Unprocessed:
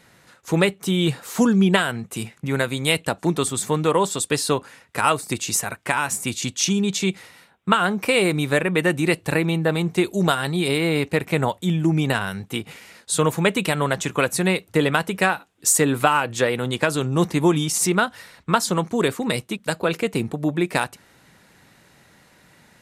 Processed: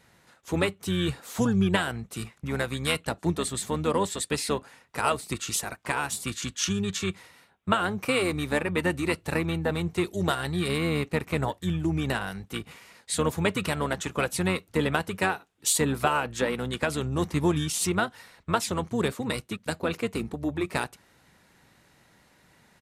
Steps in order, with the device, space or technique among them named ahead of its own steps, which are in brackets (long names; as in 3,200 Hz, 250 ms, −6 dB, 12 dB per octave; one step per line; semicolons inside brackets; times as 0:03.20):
octave pedal (pitch-shifted copies added −12 semitones −8 dB)
level −7 dB